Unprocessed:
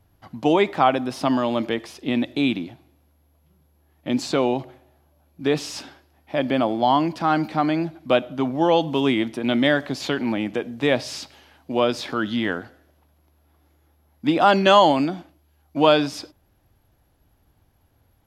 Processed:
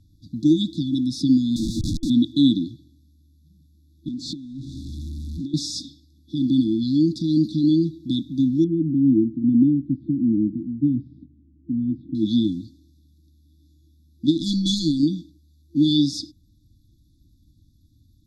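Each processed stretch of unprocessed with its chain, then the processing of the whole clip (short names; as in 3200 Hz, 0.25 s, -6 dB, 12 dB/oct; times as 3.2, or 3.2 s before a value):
1.56–2.1 bell 64 Hz -14 dB 0.33 oct + notch 3300 Hz, Q 5.2 + Schmitt trigger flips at -36 dBFS
4.08–5.54 zero-crossing step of -29.5 dBFS + LPF 2100 Hz 6 dB/oct + compressor 16:1, threshold -31 dBFS
8.64–12.15 LPF 1100 Hz 24 dB/oct + mismatched tape noise reduction decoder only
14.26–15.03 hard clip -5 dBFS + power-law curve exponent 1.4
whole clip: FFT band-reject 340–3400 Hz; LPF 7000 Hz 12 dB/oct; gain +5.5 dB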